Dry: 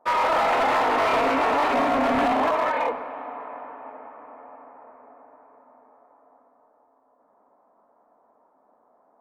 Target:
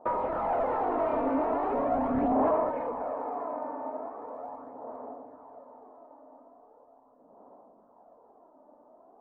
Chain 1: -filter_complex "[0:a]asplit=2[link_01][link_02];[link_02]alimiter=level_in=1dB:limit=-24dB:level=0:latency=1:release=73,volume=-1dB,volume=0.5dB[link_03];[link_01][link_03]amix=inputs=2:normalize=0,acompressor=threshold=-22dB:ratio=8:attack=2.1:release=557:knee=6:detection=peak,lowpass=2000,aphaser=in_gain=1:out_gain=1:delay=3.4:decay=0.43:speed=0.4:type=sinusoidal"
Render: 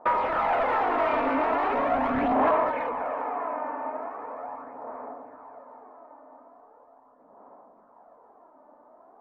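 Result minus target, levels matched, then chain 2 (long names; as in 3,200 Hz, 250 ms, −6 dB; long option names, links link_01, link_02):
2,000 Hz band +9.5 dB
-filter_complex "[0:a]asplit=2[link_01][link_02];[link_02]alimiter=level_in=1dB:limit=-24dB:level=0:latency=1:release=73,volume=-1dB,volume=0.5dB[link_03];[link_01][link_03]amix=inputs=2:normalize=0,acompressor=threshold=-22dB:ratio=8:attack=2.1:release=557:knee=6:detection=peak,lowpass=720,aphaser=in_gain=1:out_gain=1:delay=3.4:decay=0.43:speed=0.4:type=sinusoidal"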